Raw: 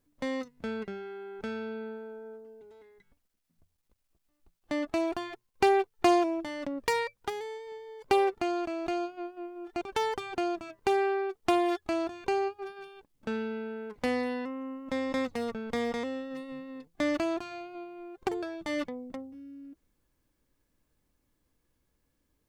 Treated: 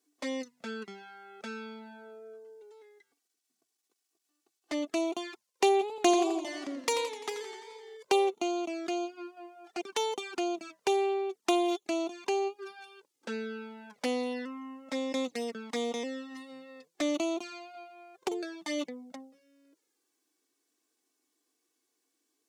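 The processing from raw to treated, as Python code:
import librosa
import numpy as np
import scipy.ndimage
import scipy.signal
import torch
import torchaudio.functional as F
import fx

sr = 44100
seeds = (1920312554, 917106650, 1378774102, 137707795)

y = scipy.signal.sosfilt(scipy.signal.butter(4, 230.0, 'highpass', fs=sr, output='sos'), x)
y = fx.peak_eq(y, sr, hz=6700.0, db=10.0, octaves=1.8)
y = fx.env_flanger(y, sr, rest_ms=2.7, full_db=-28.0)
y = fx.echo_warbled(y, sr, ms=86, feedback_pct=65, rate_hz=2.8, cents=140, wet_db=-11.0, at=(5.72, 7.97))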